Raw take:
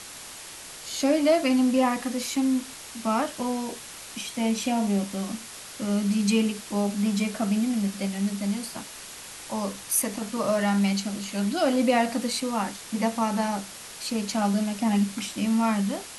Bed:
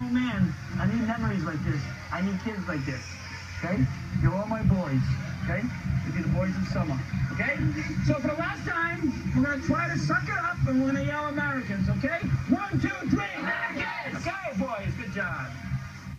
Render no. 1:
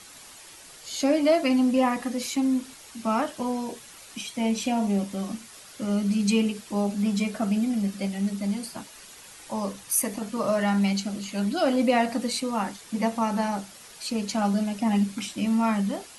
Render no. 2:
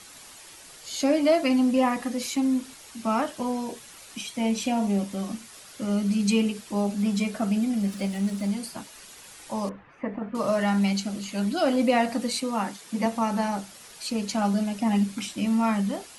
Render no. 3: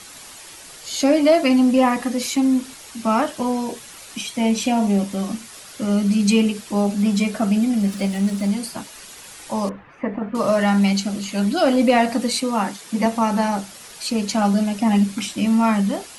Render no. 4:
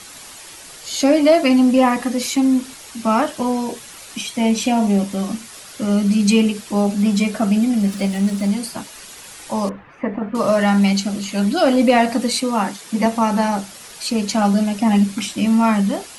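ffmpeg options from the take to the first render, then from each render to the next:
-af "afftdn=nr=8:nf=-42"
-filter_complex "[0:a]asettb=1/sr,asplit=3[a][b][c];[a]atrim=end=7.814[d];[b]atrim=start=7.81:end=8.5,asetpts=PTS-STARTPTS,afade=t=in:d=0.004:c=qsin,afade=t=out:st=0.686:d=0.004:c=qsin,aeval=exprs='val(0)+0.5*0.0075*sgn(val(0))':c=same[e];[c]atrim=start=8.496[f];[d][e]acrossfade=d=0.004:c1=hsin:c2=qsin[g];[g][f]acrossfade=d=0.004:c1=qsin:c2=hsin,asettb=1/sr,asplit=3[h][i][j];[h]atrim=end=9.694[k];[i]atrim=start=9.69:end=10.35,asetpts=PTS-STARTPTS,afade=t=in:d=0.004:c=qsin,afade=t=out:st=0.656:d=0.004:c=qsin,lowpass=f=2k:w=0.5412,lowpass=f=2k:w=1.3066[l];[j]atrim=start=10.346[m];[k][l]acrossfade=d=0.004:c1=hsin:c2=qsin[n];[n][m]acrossfade=d=0.004:c1=qsin:c2=hsin,asettb=1/sr,asplit=3[o][p][q];[o]atrim=end=12.404[r];[p]atrim=start=12.4:end=13.06,asetpts=PTS-STARTPTS,afade=t=in:d=0.004:c=qsin,afade=t=out:st=0.656:d=0.004:c=qsin,highpass=f=120:w=0.5412,highpass=f=120:w=1.3066[s];[q]atrim=start=13.056[t];[r][s]acrossfade=d=0.004:c1=hsin:c2=qsin[u];[u][t]acrossfade=d=0.004:c1=qsin:c2=hsin"
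-af "acontrast=65"
-af "volume=2dB"

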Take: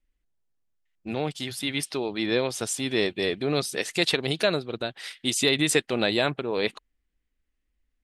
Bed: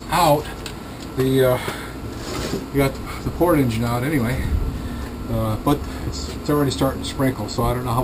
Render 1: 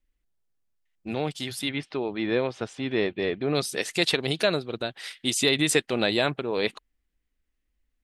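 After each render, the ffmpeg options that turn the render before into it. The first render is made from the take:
-filter_complex "[0:a]asettb=1/sr,asplit=3[a][b][c];[a]atrim=end=1.694[d];[b]atrim=start=1.69:end=3.55,asetpts=PTS-STARTPTS,afade=t=in:d=0.004:c=qsin,afade=t=out:st=1.856:d=0.004:c=qsin,lowpass=2.5k[e];[c]atrim=start=3.546[f];[d][e]acrossfade=d=0.004:c1=hsin:c2=qsin[g];[g][f]acrossfade=d=0.004:c1=qsin:c2=hsin"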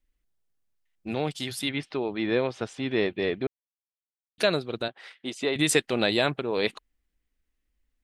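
-filter_complex "[0:a]asettb=1/sr,asplit=3[a][b][c];[a]atrim=end=4.884[d];[b]atrim=start=4.88:end=5.56,asetpts=PTS-STARTPTS,afade=t=in:d=0.004:c=qsin,afade=t=out:st=0.676:d=0.004:c=qsin,bandpass=f=700:t=q:w=0.67[e];[c]atrim=start=5.556[f];[d][e]acrossfade=d=0.004:c1=hsin:c2=qsin[g];[g][f]acrossfade=d=0.004:c1=qsin:c2=hsin,asplit=3[h][i][j];[h]atrim=end=3.47,asetpts=PTS-STARTPTS,afade=t=out:st=3.466:d=0.004:c=hsin[k];[i]atrim=start=3.47:end=4.38,asetpts=PTS-STARTPTS,volume=0[l];[j]atrim=start=4.38,asetpts=PTS-STARTPTS,afade=t=in:d=0.004:c=hsin[m];[k][l][m]concat=n=3:v=0:a=1"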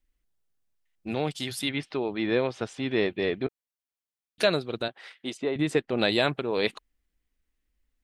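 -filter_complex "[0:a]asettb=1/sr,asplit=3[a][b][c];[a]atrim=end=3.434[d];[b]atrim=start=3.43:end=4.48,asetpts=PTS-STARTPTS,afade=t=in:d=0.004:c=qsin,afade=t=out:st=1.046:d=0.004:c=qsin,asplit=2[e][f];[f]adelay=16,volume=-12.5dB[g];[e][g]amix=inputs=2:normalize=0,atrim=end_sample=46305[h];[c]atrim=start=4.476[i];[d][h]acrossfade=d=0.004:c1=hsin:c2=qsin[j];[j][i]acrossfade=d=0.004:c1=qsin:c2=hsin,asplit=3[k][l][m];[k]afade=t=out:st=5.36:d=0.02[n];[l]lowpass=f=1k:p=1,afade=t=in:st=5.36:d=0.02,afade=t=out:st=5.97:d=0.02[o];[m]afade=t=in:st=5.97:d=0.02[p];[n][o][p]amix=inputs=3:normalize=0"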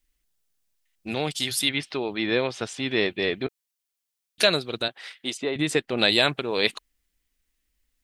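-af "highshelf=f=2.1k:g=10.5"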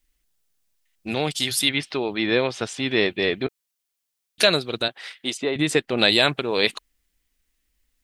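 -af "volume=3dB,alimiter=limit=-3dB:level=0:latency=1"

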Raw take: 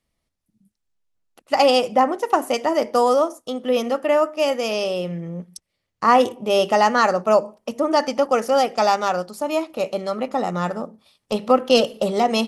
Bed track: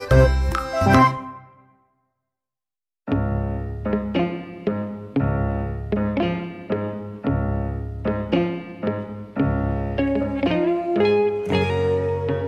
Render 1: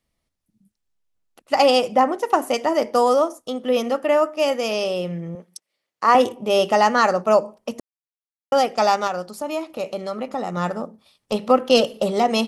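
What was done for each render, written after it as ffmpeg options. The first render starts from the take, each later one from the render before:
-filter_complex "[0:a]asettb=1/sr,asplit=3[a][b][c];[a]atrim=end=5.354[d];[b]atrim=start=5.35:end=6.15,asetpts=PTS-STARTPTS,afade=t=in:d=0.004:c=qsin,afade=t=out:st=0.796:d=0.004:c=qsin,highpass=350[e];[c]atrim=start=6.146[f];[d][e]acrossfade=d=0.004:c1=hsin:c2=qsin[g];[g][f]acrossfade=d=0.004:c1=qsin:c2=hsin,asettb=1/sr,asplit=3[h][i][j];[h]atrim=end=9.074[k];[i]atrim=start=9.07:end=10.57,asetpts=PTS-STARTPTS,afade=t=in:d=0.004:c=qsin,afade=t=out:st=1.496:d=0.004:c=qsin,acompressor=threshold=-28dB:ratio=1.5:attack=3.2:release=140:knee=1:detection=peak[l];[j]atrim=start=10.566[m];[k][l]acrossfade=d=0.004:c1=hsin:c2=qsin[n];[n][m]acrossfade=d=0.004:c1=qsin:c2=hsin,asplit=3[o][p][q];[o]atrim=end=7.8,asetpts=PTS-STARTPTS,afade=t=out:st=7.796:d=0.004:c=hsin[r];[p]atrim=start=7.8:end=8.52,asetpts=PTS-STARTPTS,volume=0[s];[q]atrim=start=8.52,asetpts=PTS-STARTPTS,afade=t=in:d=0.004:c=hsin[t];[r][s][t]concat=n=3:v=0:a=1"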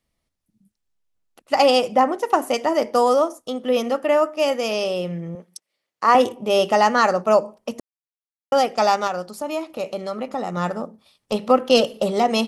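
-af anull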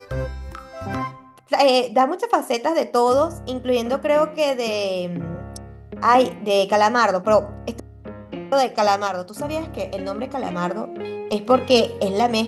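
-filter_complex "[1:a]volume=-12.5dB[a];[0:a][a]amix=inputs=2:normalize=0"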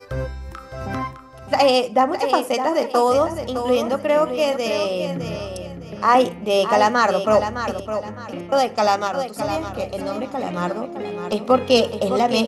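-af "aecho=1:1:610|1220|1830:0.355|0.106|0.0319"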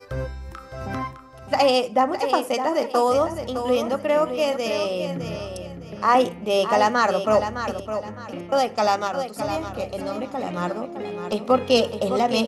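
-af "volume=-2.5dB"

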